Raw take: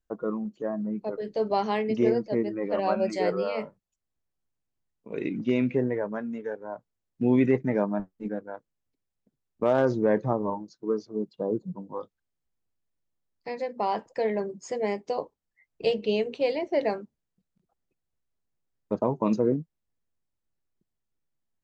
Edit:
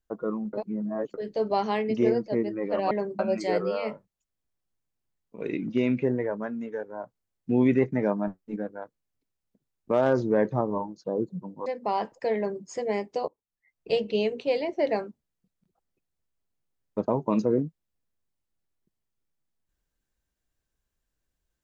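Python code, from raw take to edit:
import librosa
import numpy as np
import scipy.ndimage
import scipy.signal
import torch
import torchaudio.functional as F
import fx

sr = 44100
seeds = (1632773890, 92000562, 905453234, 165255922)

y = fx.edit(x, sr, fx.reverse_span(start_s=0.53, length_s=0.61),
    fx.cut(start_s=10.76, length_s=0.61),
    fx.cut(start_s=11.99, length_s=1.61),
    fx.duplicate(start_s=14.3, length_s=0.28, to_s=2.91),
    fx.fade_in_from(start_s=15.22, length_s=0.69, floor_db=-24.0), tone=tone)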